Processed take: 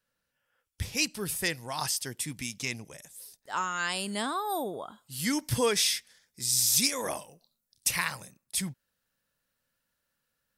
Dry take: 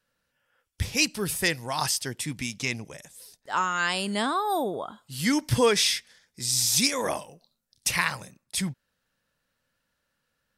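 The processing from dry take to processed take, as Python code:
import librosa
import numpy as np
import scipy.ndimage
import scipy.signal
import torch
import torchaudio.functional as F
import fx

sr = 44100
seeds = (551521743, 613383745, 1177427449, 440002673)

y = fx.high_shelf(x, sr, hz=8600.0, db=fx.steps((0.0, 5.0), (1.96, 11.5)))
y = y * librosa.db_to_amplitude(-5.5)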